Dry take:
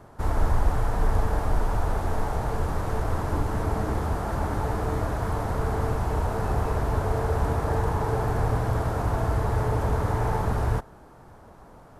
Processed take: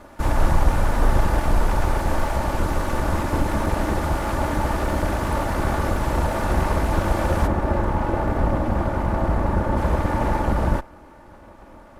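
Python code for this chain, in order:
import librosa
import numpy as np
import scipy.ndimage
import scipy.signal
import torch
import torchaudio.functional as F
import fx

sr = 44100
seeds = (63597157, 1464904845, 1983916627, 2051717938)

y = fx.lower_of_two(x, sr, delay_ms=3.4)
y = fx.high_shelf(y, sr, hz=2500.0, db=fx.steps((0.0, 2.0), (7.46, -12.0), (9.76, -5.5)))
y = F.gain(torch.from_numpy(y), 6.0).numpy()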